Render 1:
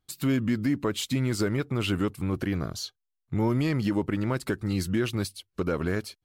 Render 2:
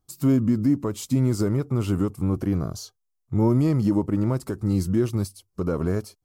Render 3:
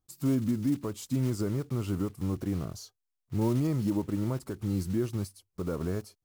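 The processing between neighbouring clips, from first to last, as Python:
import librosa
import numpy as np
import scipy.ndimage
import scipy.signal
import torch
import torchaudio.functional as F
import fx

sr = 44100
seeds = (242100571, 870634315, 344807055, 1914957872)

y1 = fx.hpss(x, sr, part='harmonic', gain_db=7)
y1 = fx.band_shelf(y1, sr, hz=2500.0, db=-11.0, octaves=1.7)
y1 = F.gain(torch.from_numpy(y1), -1.0).numpy()
y2 = fx.block_float(y1, sr, bits=5)
y2 = F.gain(torch.from_numpy(y2), -7.5).numpy()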